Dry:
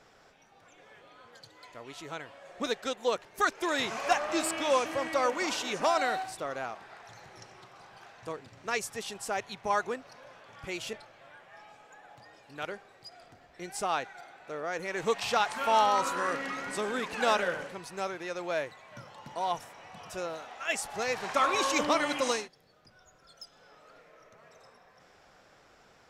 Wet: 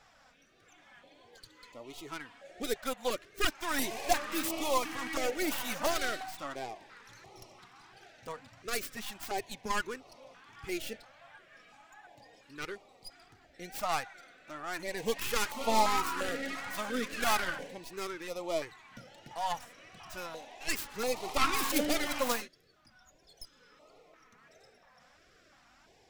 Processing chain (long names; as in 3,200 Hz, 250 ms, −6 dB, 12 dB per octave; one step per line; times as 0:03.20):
stylus tracing distortion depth 0.41 ms
flanger 1.5 Hz, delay 2.3 ms, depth 2 ms, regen +32%
notch on a step sequencer 2.9 Hz 380–1,600 Hz
level +3 dB